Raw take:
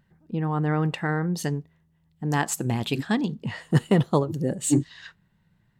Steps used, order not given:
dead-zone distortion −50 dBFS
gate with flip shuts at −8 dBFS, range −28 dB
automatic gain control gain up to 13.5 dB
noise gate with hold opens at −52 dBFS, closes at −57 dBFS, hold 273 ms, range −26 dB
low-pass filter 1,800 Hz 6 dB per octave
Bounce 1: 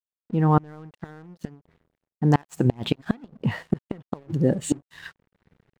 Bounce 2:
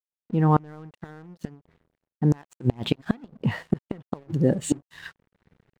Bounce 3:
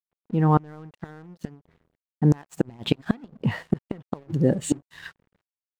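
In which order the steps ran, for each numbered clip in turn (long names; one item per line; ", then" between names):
automatic gain control, then low-pass filter, then gate with flip, then dead-zone distortion, then noise gate with hold
automatic gain control, then gate with flip, then low-pass filter, then dead-zone distortion, then noise gate with hold
noise gate with hold, then low-pass filter, then automatic gain control, then gate with flip, then dead-zone distortion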